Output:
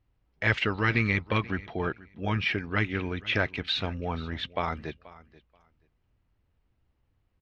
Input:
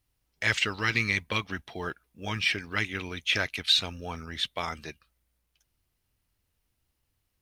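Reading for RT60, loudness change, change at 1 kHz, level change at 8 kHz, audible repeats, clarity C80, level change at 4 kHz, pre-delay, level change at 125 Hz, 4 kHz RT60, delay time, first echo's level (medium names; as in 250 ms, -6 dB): no reverb, -0.5 dB, +3.0 dB, under -15 dB, 2, no reverb, -6.0 dB, no reverb, +6.5 dB, no reverb, 482 ms, -20.0 dB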